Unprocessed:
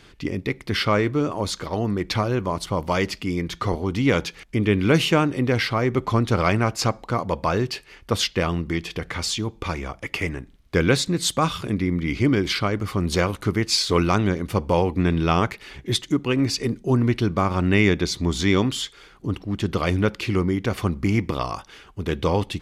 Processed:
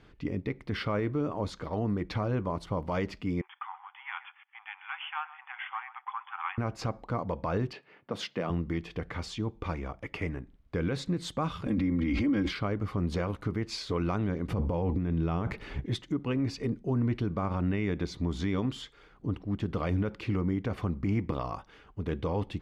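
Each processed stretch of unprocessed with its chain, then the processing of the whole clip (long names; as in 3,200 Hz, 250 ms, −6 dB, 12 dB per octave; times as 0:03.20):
0:03.41–0:06.58: gain on one half-wave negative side −7 dB + linear-phase brick-wall band-pass 750–3,500 Hz + single-tap delay 128 ms −16 dB
0:07.73–0:08.50: low-pass that shuts in the quiet parts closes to 2,400 Hz, open at −22.5 dBFS + high-pass filter 140 Hz 24 dB per octave + parametric band 660 Hz +3 dB 0.44 octaves
0:11.66–0:12.51: comb filter 3.7 ms, depth 92% + background raised ahead of every attack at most 33 dB per second
0:14.48–0:15.86: low-shelf EQ 410 Hz +6.5 dB + compressor whose output falls as the input rises −22 dBFS
whole clip: low-pass filter 1,200 Hz 6 dB per octave; notch filter 370 Hz, Q 12; brickwall limiter −16 dBFS; level −5 dB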